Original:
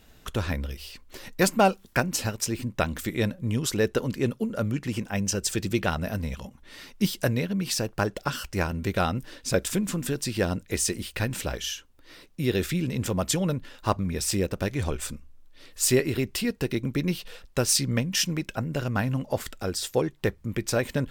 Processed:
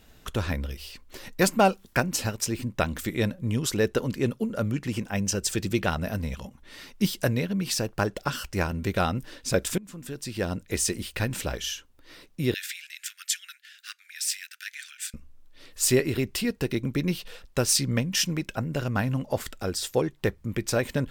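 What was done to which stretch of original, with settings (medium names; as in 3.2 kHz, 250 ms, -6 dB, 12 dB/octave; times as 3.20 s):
9.78–10.78 s: fade in, from -21 dB
12.54–15.14 s: steep high-pass 1.5 kHz 72 dB/octave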